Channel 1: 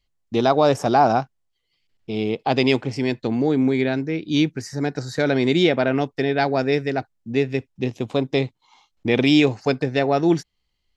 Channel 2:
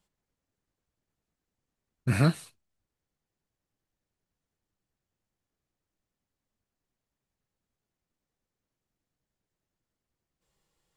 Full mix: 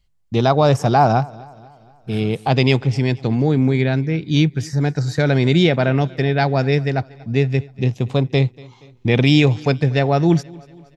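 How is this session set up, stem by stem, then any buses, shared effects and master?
+2.0 dB, 0.00 s, no send, echo send −23 dB, low shelf with overshoot 200 Hz +7.5 dB, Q 1.5
−4.5 dB, 0.00 s, no send, no echo send, brickwall limiter −26 dBFS, peak gain reduction 15 dB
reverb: not used
echo: repeating echo 237 ms, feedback 51%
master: no processing

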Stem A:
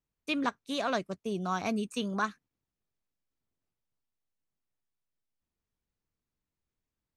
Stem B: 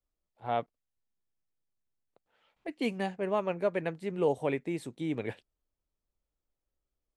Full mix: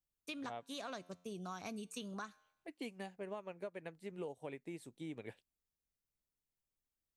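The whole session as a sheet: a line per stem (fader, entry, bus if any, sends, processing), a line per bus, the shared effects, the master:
−7.5 dB, 0.00 s, no send, tuned comb filter 89 Hz, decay 0.73 s, harmonics all, mix 30%
−5.5 dB, 0.00 s, no send, expander for the loud parts 1.5 to 1, over −42 dBFS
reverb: not used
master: high-shelf EQ 5,500 Hz +10.5 dB; downward compressor 10 to 1, threshold −41 dBFS, peak gain reduction 13.5 dB

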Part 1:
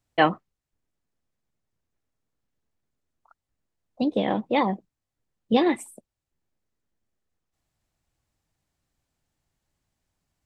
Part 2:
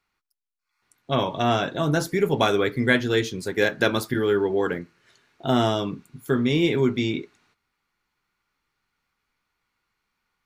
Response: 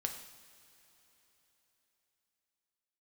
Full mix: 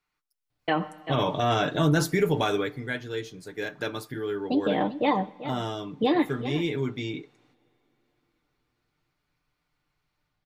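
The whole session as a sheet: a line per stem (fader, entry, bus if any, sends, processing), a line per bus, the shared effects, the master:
−3.5 dB, 0.50 s, send −11.5 dB, echo send −12.5 dB, Butterworth low-pass 5,000 Hz
0:02.36 −7 dB → 0:02.84 −17 dB, 0.00 s, send −19 dB, no echo send, automatic gain control gain up to 11.5 dB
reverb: on, pre-delay 3 ms
echo: single-tap delay 389 ms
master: comb filter 6.7 ms, depth 50%; brickwall limiter −13.5 dBFS, peak gain reduction 9.5 dB

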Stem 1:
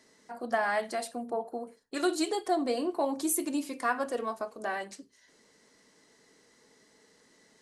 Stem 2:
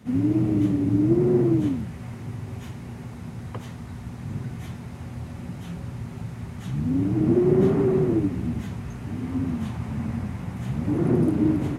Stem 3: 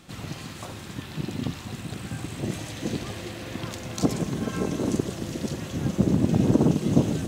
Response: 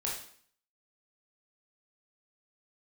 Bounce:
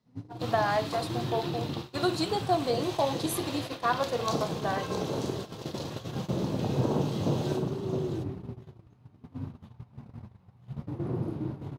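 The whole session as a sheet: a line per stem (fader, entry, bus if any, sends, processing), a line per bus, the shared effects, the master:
−1.0 dB, 0.00 s, no bus, no send, no echo send, no processing
−4.0 dB, 0.00 s, bus A, send −16.5 dB, echo send −19 dB, automatic ducking −24 dB, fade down 0.45 s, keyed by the first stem
+2.5 dB, 0.30 s, bus A, send −13 dB, echo send −15 dB, low-shelf EQ 190 Hz −10.5 dB
bus A: 0.0 dB, flanger 1.3 Hz, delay 4.6 ms, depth 6.7 ms, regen −27%; downward compressor 2.5 to 1, threshold −40 dBFS, peak gain reduction 14 dB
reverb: on, RT60 0.55 s, pre-delay 17 ms
echo: single-tap delay 665 ms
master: noise gate −35 dBFS, range −22 dB; octave-band graphic EQ 125/250/500/1,000/2,000/4,000/8,000 Hz +6/−4/+3/+5/−5/+7/−8 dB

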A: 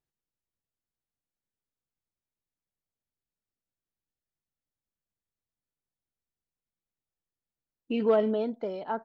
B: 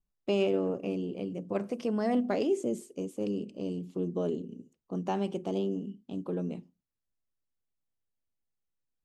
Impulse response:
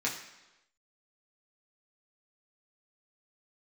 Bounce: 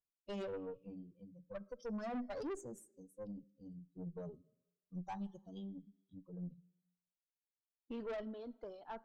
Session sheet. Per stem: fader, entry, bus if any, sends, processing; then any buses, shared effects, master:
−12.0 dB, 0.00 s, send −19 dB, reverb reduction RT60 1.3 s; low-shelf EQ 160 Hz −7 dB
−3.5 dB, 0.00 s, send −20 dB, spectral dynamics exaggerated over time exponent 3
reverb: on, RT60 1.0 s, pre-delay 3 ms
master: parametric band 2,300 Hz −10.5 dB 0.34 octaves; tube saturation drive 39 dB, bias 0.35; low-shelf EQ 150 Hz +5 dB

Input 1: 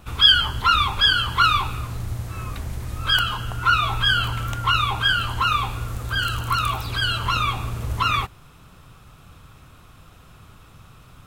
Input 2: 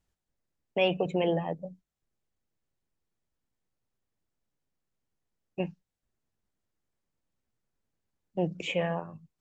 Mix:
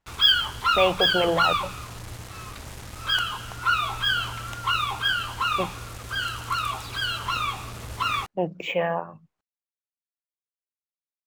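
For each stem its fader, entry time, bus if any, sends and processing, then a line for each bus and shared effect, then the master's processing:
−4.0 dB, 0.00 s, no send, low-shelf EQ 210 Hz −9 dB; bit-depth reduction 6 bits, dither none
−2.5 dB, 0.00 s, no send, parametric band 1,100 Hz +11.5 dB 2.8 octaves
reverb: not used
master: linearly interpolated sample-rate reduction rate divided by 2×

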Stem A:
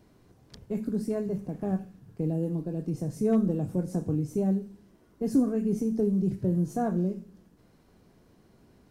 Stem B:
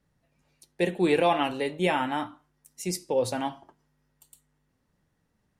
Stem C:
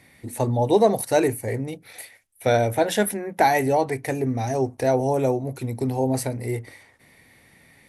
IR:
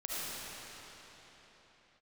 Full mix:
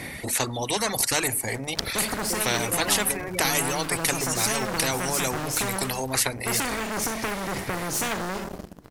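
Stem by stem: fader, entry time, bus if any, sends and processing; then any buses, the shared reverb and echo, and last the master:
−4.5 dB, 1.25 s, no send, leveller curve on the samples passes 3
−1.5 dB, 1.50 s, no send, gate on every frequency bin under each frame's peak −10 dB strong
+0.5 dB, 0.00 s, no send, reverb reduction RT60 1.5 s; low-shelf EQ 420 Hz +3.5 dB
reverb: not used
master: every bin compressed towards the loudest bin 4 to 1

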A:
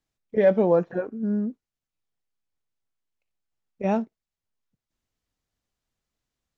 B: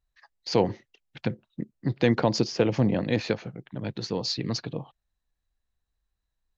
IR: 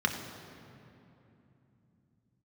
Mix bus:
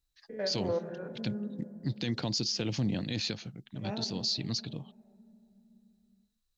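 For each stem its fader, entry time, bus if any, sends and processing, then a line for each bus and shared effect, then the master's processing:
−14.5 dB, 0.00 s, send −10.5 dB, spectrum averaged block by block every 100 ms
−4.0 dB, 0.00 s, no send, graphic EQ with 10 bands 500 Hz −9 dB, 1,000 Hz −7 dB, 2,000 Hz −6 dB, 4,000 Hz +4 dB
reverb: on, RT60 2.9 s, pre-delay 3 ms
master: high-shelf EQ 2,600 Hz +9.5 dB; brickwall limiter −22 dBFS, peak gain reduction 9 dB

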